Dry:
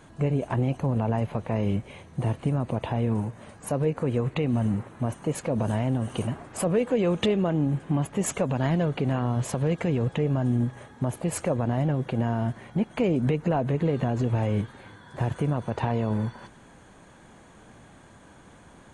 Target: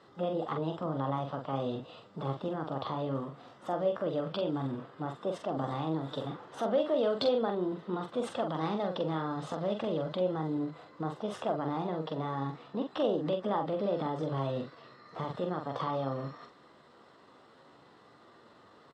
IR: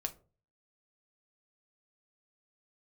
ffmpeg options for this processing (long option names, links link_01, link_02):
-filter_complex "[0:a]asetrate=53981,aresample=44100,atempo=0.816958,highpass=160,equalizer=frequency=180:width_type=q:width=4:gain=-6,equalizer=frequency=260:width_type=q:width=4:gain=-3,equalizer=frequency=500:width_type=q:width=4:gain=5,equalizer=frequency=1200:width_type=q:width=4:gain=5,equalizer=frequency=2300:width_type=q:width=4:gain=-10,equalizer=frequency=3500:width_type=q:width=4:gain=5,lowpass=frequency=6200:width=0.5412,lowpass=frequency=6200:width=1.3066,asplit=2[link_01][link_02];[link_02]adelay=44,volume=-5.5dB[link_03];[link_01][link_03]amix=inputs=2:normalize=0,volume=-7dB"